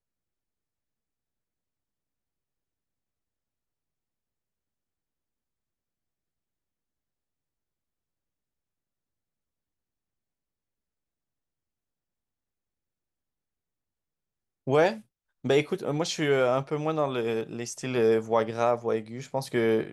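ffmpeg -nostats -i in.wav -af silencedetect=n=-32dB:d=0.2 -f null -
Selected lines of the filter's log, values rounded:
silence_start: 0.00
silence_end: 14.67 | silence_duration: 14.67
silence_start: 14.94
silence_end: 15.45 | silence_duration: 0.51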